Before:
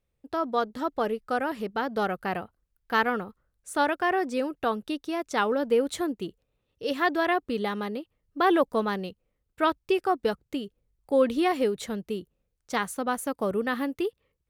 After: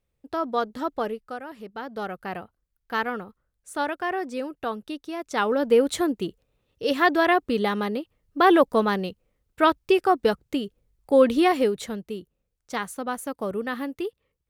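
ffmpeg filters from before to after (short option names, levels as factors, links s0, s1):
-af "volume=6.31,afade=t=out:st=0.93:d=0.48:silence=0.281838,afade=t=in:st=1.41:d=0.99:silence=0.421697,afade=t=in:st=5.17:d=0.6:silence=0.421697,afade=t=out:st=11.43:d=0.63:silence=0.473151"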